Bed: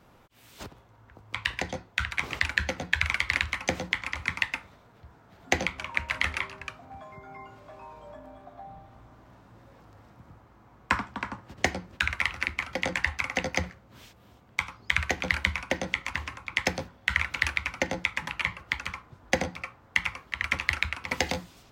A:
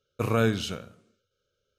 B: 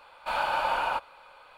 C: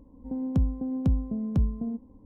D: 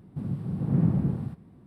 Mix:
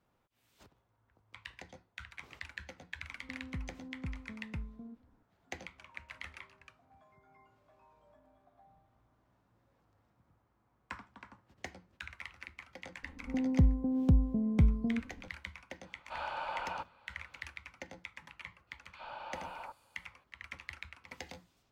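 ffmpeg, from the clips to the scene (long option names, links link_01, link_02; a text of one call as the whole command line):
ffmpeg -i bed.wav -i cue0.wav -i cue1.wav -i cue2.wav -filter_complex "[3:a]asplit=2[link_01][link_02];[2:a]asplit=2[link_03][link_04];[0:a]volume=-19dB[link_05];[link_01]lowpass=frequency=1500:width_type=q:width=4.9[link_06];[link_03]lowpass=5600[link_07];[link_04]acrossover=split=1600|5500[link_08][link_09][link_10];[link_08]adelay=60[link_11];[link_10]adelay=400[link_12];[link_11][link_09][link_12]amix=inputs=3:normalize=0[link_13];[link_06]atrim=end=2.25,asetpts=PTS-STARTPTS,volume=-17dB,afade=type=in:duration=0.004:curve=hsin,afade=type=out:start_time=2.246:duration=0.004:curve=hsin,adelay=2980[link_14];[link_02]atrim=end=2.25,asetpts=PTS-STARTPTS,volume=-1dB,afade=type=in:duration=0.004:curve=hsin,afade=type=out:start_time=2.246:duration=0.004:curve=hsin,adelay=13030[link_15];[link_07]atrim=end=1.57,asetpts=PTS-STARTPTS,volume=-11.5dB,afade=type=in:duration=0.004:curve=hsin,afade=type=out:start_time=1.566:duration=0.004:curve=hsin,adelay=15840[link_16];[link_13]atrim=end=1.57,asetpts=PTS-STARTPTS,volume=-16.5dB,afade=type=in:duration=0.004:curve=hsin,afade=type=out:start_time=1.566:duration=0.004:curve=hsin,adelay=18670[link_17];[link_05][link_14][link_15][link_16][link_17]amix=inputs=5:normalize=0" out.wav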